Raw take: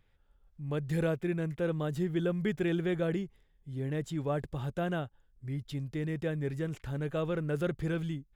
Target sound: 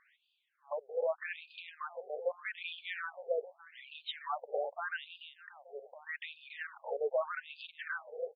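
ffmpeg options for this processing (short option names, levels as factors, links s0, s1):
-af "aecho=1:1:291|582|873:0.251|0.0678|0.0183,alimiter=level_in=2:limit=0.0631:level=0:latency=1:release=92,volume=0.501,afftfilt=real='re*between(b*sr/1024,550*pow(3500/550,0.5+0.5*sin(2*PI*0.82*pts/sr))/1.41,550*pow(3500/550,0.5+0.5*sin(2*PI*0.82*pts/sr))*1.41)':imag='im*between(b*sr/1024,550*pow(3500/550,0.5+0.5*sin(2*PI*0.82*pts/sr))/1.41,550*pow(3500/550,0.5+0.5*sin(2*PI*0.82*pts/sr))*1.41)':win_size=1024:overlap=0.75,volume=4.22"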